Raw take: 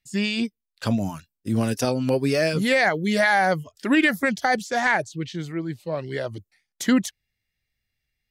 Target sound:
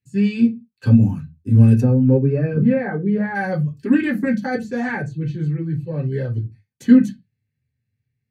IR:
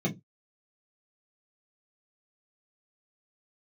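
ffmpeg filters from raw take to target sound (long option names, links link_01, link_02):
-filter_complex "[0:a]asplit=3[link_01][link_02][link_03];[link_01]afade=type=out:start_time=1.8:duration=0.02[link_04];[link_02]lowpass=1400,afade=type=in:start_time=1.8:duration=0.02,afade=type=out:start_time=3.34:duration=0.02[link_05];[link_03]afade=type=in:start_time=3.34:duration=0.02[link_06];[link_04][link_05][link_06]amix=inputs=3:normalize=0[link_07];[1:a]atrim=start_sample=2205,asetrate=30870,aresample=44100[link_08];[link_07][link_08]afir=irnorm=-1:irlink=0,volume=-12.5dB"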